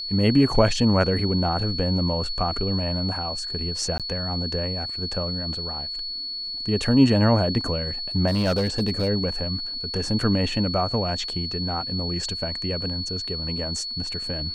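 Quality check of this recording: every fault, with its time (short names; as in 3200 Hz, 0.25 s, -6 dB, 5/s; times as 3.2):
tone 4400 Hz -29 dBFS
3.98–4 gap 17 ms
8.27–9.09 clipped -17.5 dBFS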